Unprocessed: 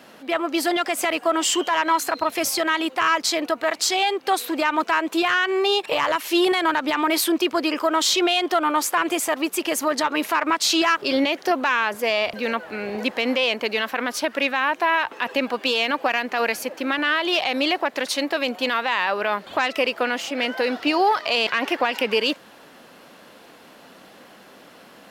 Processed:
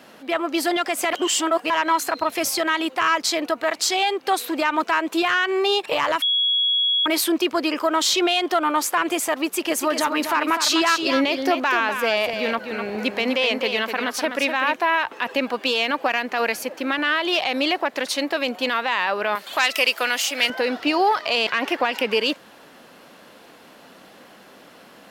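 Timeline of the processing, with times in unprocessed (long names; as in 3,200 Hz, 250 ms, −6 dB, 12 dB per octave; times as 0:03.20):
0:01.13–0:01.70: reverse
0:06.22–0:07.06: beep over 3,340 Hz −17 dBFS
0:09.45–0:14.76: single-tap delay 250 ms −7 dB
0:19.35–0:20.50: spectral tilt +4 dB per octave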